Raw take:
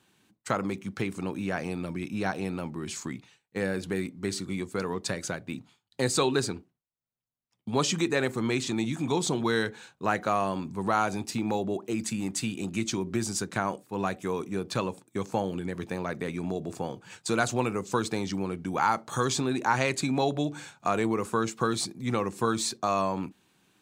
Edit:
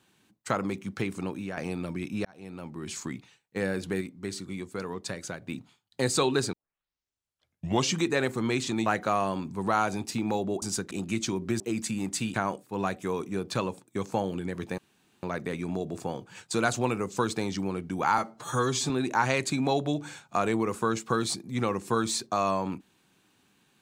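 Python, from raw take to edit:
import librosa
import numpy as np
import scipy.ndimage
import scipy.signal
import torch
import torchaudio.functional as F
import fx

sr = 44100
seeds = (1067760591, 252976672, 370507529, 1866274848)

y = fx.edit(x, sr, fx.fade_out_to(start_s=1.23, length_s=0.34, floor_db=-7.5),
    fx.fade_in_span(start_s=2.25, length_s=0.74),
    fx.clip_gain(start_s=4.01, length_s=1.41, db=-4.0),
    fx.tape_start(start_s=6.53, length_s=1.44),
    fx.cut(start_s=8.86, length_s=1.2),
    fx.swap(start_s=11.82, length_s=0.74, other_s=13.25, other_length_s=0.29),
    fx.insert_room_tone(at_s=15.98, length_s=0.45),
    fx.stretch_span(start_s=18.93, length_s=0.48, factor=1.5), tone=tone)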